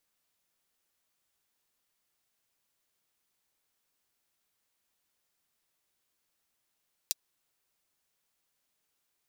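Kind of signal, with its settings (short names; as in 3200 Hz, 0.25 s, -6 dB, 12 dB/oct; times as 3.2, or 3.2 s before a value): closed hi-hat, high-pass 4300 Hz, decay 0.03 s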